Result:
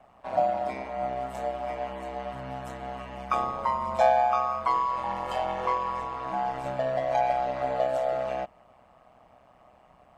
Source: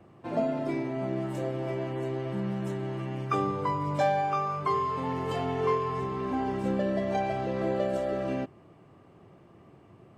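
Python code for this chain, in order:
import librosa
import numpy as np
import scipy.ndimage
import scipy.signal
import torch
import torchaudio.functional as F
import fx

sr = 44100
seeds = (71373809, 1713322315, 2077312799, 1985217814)

y = x * np.sin(2.0 * np.pi * 64.0 * np.arange(len(x)) / sr)
y = fx.low_shelf_res(y, sr, hz=510.0, db=-8.5, q=3.0)
y = y * librosa.db_to_amplitude(3.5)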